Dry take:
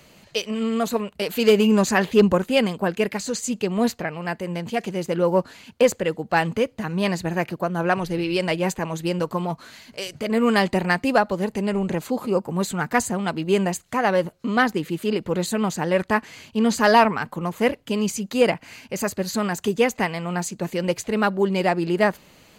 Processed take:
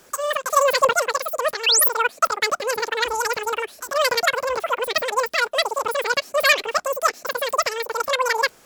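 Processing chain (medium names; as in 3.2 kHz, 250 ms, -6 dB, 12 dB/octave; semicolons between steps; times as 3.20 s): painted sound rise, 4.34–4.93 s, 930–8500 Hz -16 dBFS; wide varispeed 2.61×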